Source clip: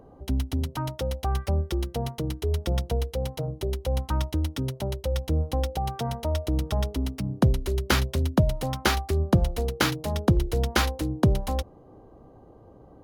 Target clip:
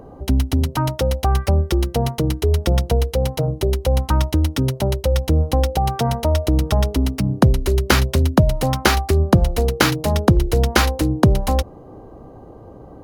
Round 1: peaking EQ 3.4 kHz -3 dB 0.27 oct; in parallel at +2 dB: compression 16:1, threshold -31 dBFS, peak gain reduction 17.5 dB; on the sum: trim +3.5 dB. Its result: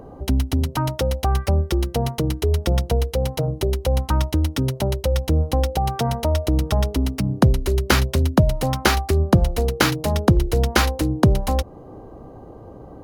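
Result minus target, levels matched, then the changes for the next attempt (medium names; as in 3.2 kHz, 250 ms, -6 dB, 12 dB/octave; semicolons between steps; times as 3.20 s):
compression: peak gain reduction +6.5 dB
change: compression 16:1, threshold -24 dBFS, peak gain reduction 11 dB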